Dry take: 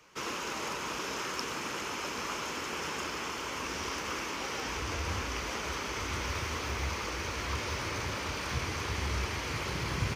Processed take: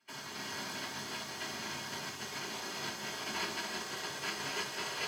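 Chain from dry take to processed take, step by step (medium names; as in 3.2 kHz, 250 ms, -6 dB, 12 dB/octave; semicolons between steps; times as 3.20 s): comb filter that takes the minimum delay 6 ms; comb of notches 910 Hz; speed mistake 7.5 ips tape played at 15 ips; low-pass 2.7 kHz 6 dB/octave; high-order bell 540 Hz -11.5 dB 2.3 oct; two-band feedback delay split 760 Hz, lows 216 ms, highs 294 ms, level -3.5 dB; spectral gate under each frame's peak -10 dB weak; high-pass 130 Hz 12 dB/octave; reverberation RT60 0.40 s, pre-delay 3 ms, DRR -2.5 dB; upward expansion 1.5:1, over -55 dBFS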